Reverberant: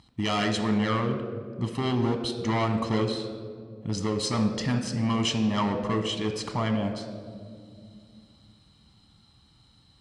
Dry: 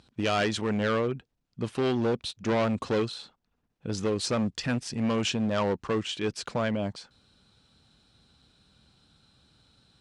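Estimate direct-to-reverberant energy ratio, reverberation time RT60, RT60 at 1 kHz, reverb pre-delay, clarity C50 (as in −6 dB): 6.0 dB, 2.2 s, 1.8 s, 7 ms, 8.0 dB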